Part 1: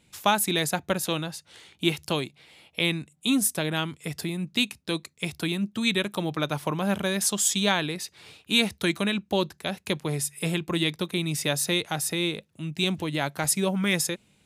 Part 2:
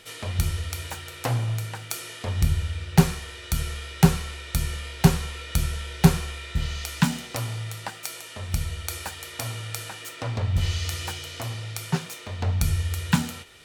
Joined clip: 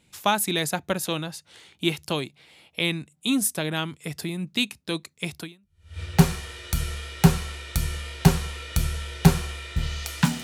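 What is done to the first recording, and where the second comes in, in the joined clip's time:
part 1
5.7 switch to part 2 from 2.49 s, crossfade 0.60 s exponential

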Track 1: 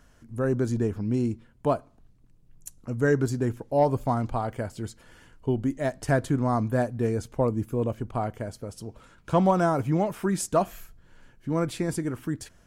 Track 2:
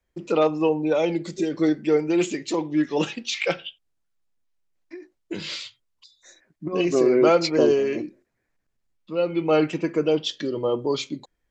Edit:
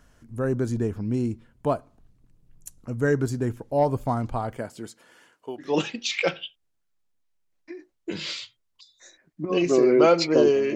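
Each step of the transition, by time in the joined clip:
track 1
4.57–5.7 HPF 150 Hz -> 710 Hz
5.64 switch to track 2 from 2.87 s, crossfade 0.12 s

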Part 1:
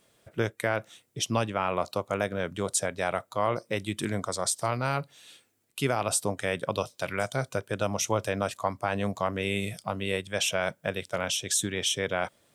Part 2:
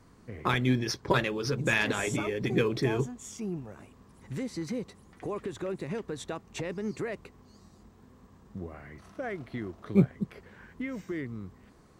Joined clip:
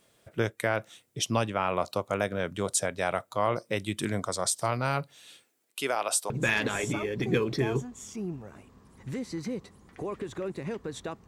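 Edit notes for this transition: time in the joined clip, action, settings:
part 1
5.44–6.3 HPF 250 Hz -> 630 Hz
6.3 switch to part 2 from 1.54 s

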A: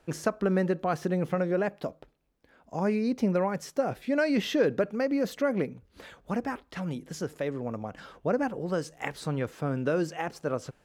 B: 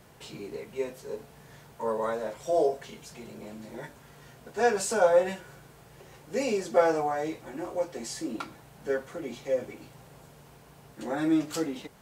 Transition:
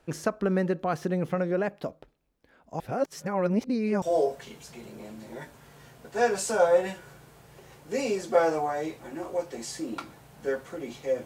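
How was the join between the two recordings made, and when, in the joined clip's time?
A
2.8–4.02 reverse
4.02 switch to B from 2.44 s

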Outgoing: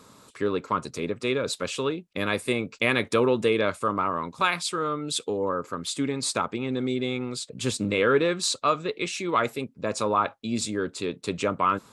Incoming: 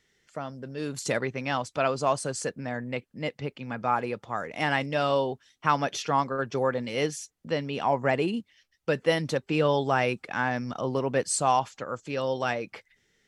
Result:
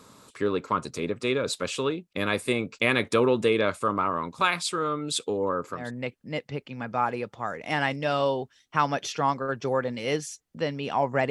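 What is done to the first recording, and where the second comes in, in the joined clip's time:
outgoing
5.8 switch to incoming from 2.7 s, crossfade 0.22 s

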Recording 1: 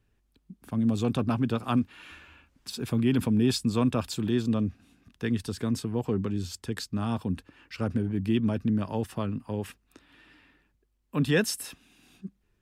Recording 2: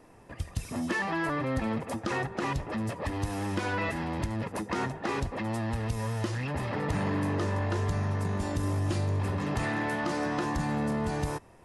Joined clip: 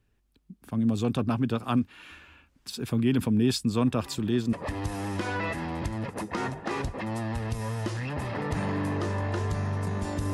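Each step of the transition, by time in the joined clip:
recording 1
3.86 add recording 2 from 2.24 s 0.67 s -16.5 dB
4.53 switch to recording 2 from 2.91 s

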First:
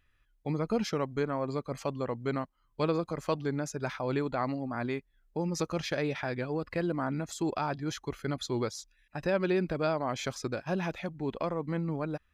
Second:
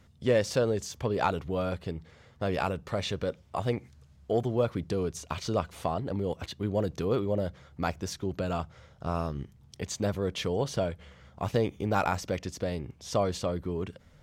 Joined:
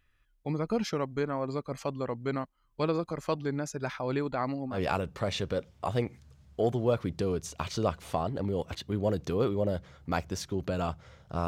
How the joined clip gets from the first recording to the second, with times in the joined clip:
first
4.75 switch to second from 2.46 s, crossfade 0.10 s

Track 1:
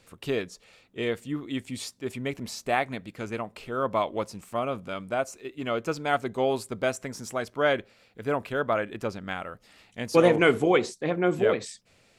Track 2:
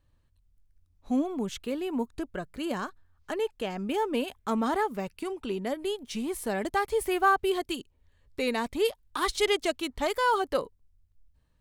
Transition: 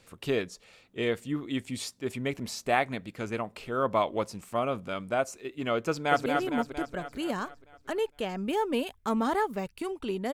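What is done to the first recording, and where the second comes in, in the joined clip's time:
track 1
5.88–6.26 echo throw 0.23 s, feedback 60%, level -4.5 dB
6.26 switch to track 2 from 1.67 s

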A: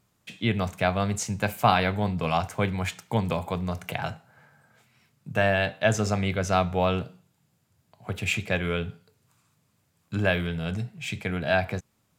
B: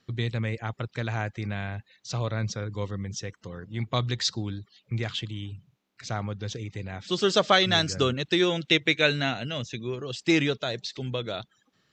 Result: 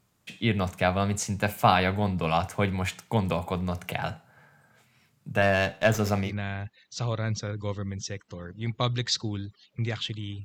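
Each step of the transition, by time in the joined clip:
A
5.42–6.35 running maximum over 3 samples
6.27 switch to B from 1.4 s, crossfade 0.16 s

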